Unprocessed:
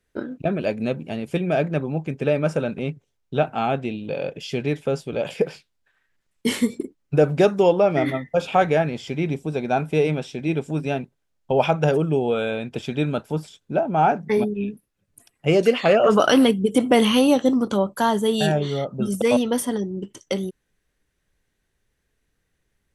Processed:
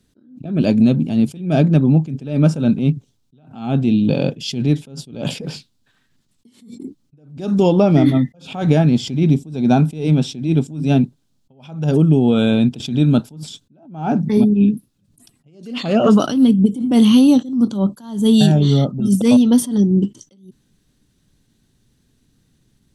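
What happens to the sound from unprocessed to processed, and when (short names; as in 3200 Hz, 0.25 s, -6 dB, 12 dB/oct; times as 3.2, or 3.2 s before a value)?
16.28–16.82 low shelf 470 Hz +5.5 dB
whole clip: graphic EQ 125/250/500/2000/4000/8000 Hz +9/+12/-5/-8/+7/+3 dB; compressor 6:1, threshold -17 dBFS; attack slew limiter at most 110 dB/s; gain +8 dB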